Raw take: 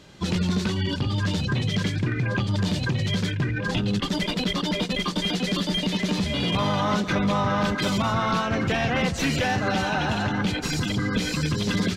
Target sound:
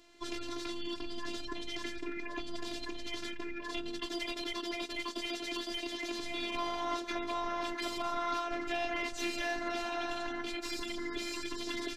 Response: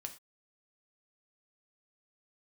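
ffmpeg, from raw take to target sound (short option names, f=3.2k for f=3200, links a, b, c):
-af "afftfilt=real='hypot(re,im)*cos(PI*b)':imag='0':win_size=512:overlap=0.75,equalizer=f=83:t=o:w=1.7:g=-10.5,volume=-6.5dB"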